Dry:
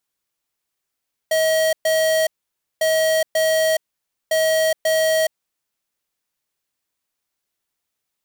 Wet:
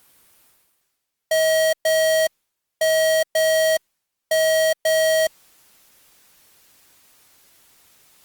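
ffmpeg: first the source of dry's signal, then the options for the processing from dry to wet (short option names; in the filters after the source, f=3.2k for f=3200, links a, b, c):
-f lavfi -i "aevalsrc='0.133*(2*lt(mod(637*t,1),0.5)-1)*clip(min(mod(mod(t,1.5),0.54),0.42-mod(mod(t,1.5),0.54))/0.005,0,1)*lt(mod(t,1.5),1.08)':d=4.5:s=44100"
-af "areverse,acompressor=mode=upward:threshold=-34dB:ratio=2.5,areverse" -ar 48000 -c:a libopus -b:a 32k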